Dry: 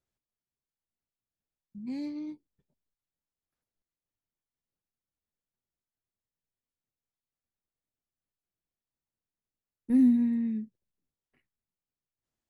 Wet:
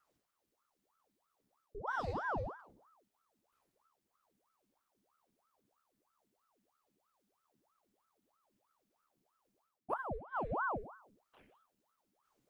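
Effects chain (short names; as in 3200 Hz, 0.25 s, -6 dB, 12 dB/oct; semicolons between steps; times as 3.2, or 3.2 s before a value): Schroeder reverb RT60 0.52 s, combs from 29 ms, DRR 1 dB; flipped gate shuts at -19 dBFS, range -27 dB; bell 72 Hz +14.5 dB 1.1 oct; reverse; compressor 6:1, threshold -41 dBFS, peak gain reduction 15.5 dB; reverse; ring modulator with a swept carrier 760 Hz, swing 75%, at 3.1 Hz; gain +7.5 dB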